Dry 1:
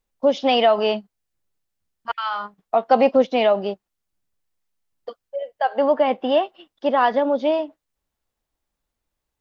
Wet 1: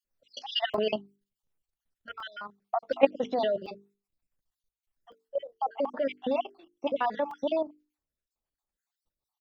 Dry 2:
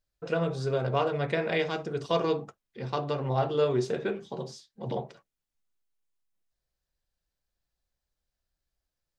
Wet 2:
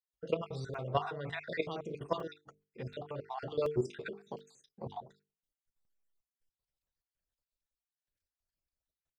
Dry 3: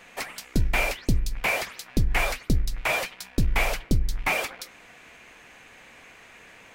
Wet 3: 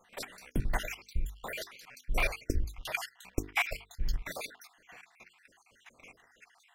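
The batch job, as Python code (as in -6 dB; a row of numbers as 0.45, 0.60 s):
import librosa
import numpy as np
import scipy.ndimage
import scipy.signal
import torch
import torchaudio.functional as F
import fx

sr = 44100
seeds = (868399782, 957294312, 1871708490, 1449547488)

y = fx.spec_dropout(x, sr, seeds[0], share_pct=55)
y = fx.level_steps(y, sr, step_db=13)
y = fx.hum_notches(y, sr, base_hz=50, count=9)
y = fx.buffer_crackle(y, sr, first_s=0.74, period_s=0.73, block=128, kind='zero')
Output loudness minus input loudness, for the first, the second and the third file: -10.5, -9.0, -9.5 LU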